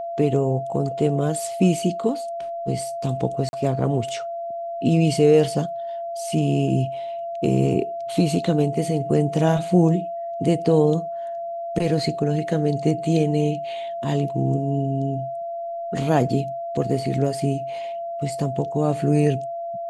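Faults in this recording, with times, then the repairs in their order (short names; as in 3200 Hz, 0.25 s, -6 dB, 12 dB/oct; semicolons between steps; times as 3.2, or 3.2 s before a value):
tone 680 Hz -27 dBFS
3.49–3.53 gap 41 ms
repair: notch 680 Hz, Q 30; interpolate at 3.49, 41 ms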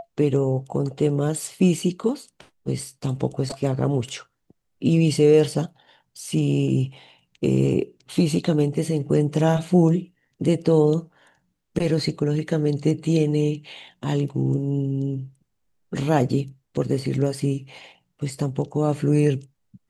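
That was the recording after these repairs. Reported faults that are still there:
none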